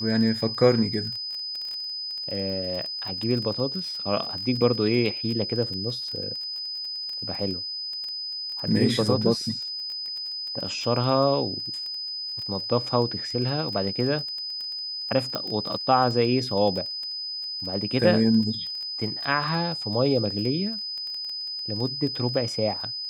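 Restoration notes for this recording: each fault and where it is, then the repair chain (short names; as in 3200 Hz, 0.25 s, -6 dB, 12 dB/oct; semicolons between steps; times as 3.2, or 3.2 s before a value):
crackle 20/s -31 dBFS
tone 5000 Hz -30 dBFS
15.35 pop -14 dBFS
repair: de-click; notch 5000 Hz, Q 30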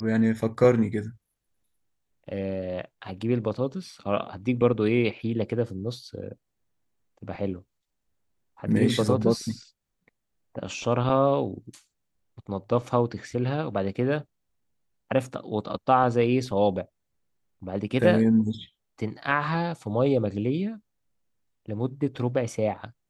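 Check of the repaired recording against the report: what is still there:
none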